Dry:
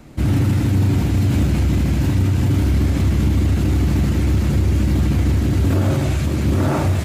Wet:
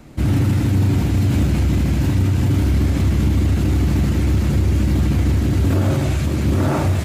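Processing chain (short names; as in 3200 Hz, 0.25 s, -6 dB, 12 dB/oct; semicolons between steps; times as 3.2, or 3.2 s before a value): nothing audible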